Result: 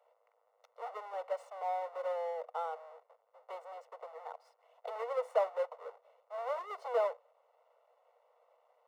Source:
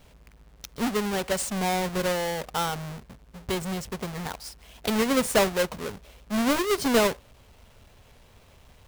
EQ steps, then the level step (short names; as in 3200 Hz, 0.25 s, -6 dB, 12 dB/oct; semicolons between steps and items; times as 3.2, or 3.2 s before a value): polynomial smoothing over 65 samples; rippled Chebyshev high-pass 470 Hz, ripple 3 dB; -5.0 dB